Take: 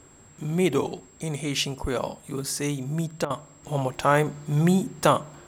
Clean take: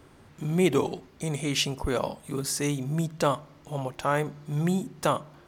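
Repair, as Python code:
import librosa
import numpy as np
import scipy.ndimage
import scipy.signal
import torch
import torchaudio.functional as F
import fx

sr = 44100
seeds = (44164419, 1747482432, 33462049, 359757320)

y = fx.notch(x, sr, hz=7600.0, q=30.0)
y = fx.fix_interpolate(y, sr, at_s=(3.25,), length_ms=51.0)
y = fx.gain(y, sr, db=fx.steps((0.0, 0.0), (3.63, -5.5)))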